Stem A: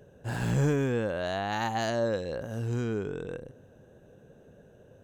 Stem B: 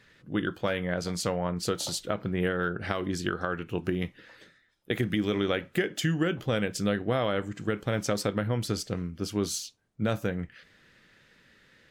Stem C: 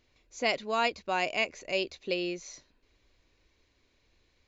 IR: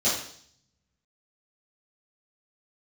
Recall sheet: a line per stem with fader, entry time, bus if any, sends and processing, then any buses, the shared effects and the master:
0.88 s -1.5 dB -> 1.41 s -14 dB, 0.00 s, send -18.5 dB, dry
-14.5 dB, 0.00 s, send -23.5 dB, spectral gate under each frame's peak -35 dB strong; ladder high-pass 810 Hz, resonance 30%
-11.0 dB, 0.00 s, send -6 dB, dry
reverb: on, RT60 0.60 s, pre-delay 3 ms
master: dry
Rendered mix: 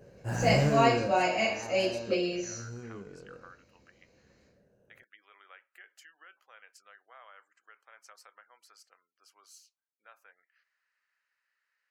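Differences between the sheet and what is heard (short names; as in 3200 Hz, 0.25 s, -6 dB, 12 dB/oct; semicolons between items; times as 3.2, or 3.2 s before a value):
stem B: send off; stem C: send -6 dB -> 0 dB; master: extra bell 3500 Hz -14.5 dB 0.22 oct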